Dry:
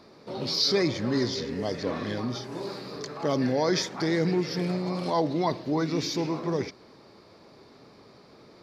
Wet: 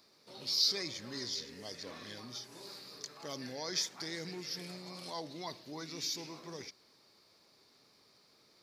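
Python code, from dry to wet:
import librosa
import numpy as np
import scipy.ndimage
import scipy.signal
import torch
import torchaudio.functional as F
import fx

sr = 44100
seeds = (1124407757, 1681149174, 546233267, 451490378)

y = F.preemphasis(torch.from_numpy(x), 0.9).numpy()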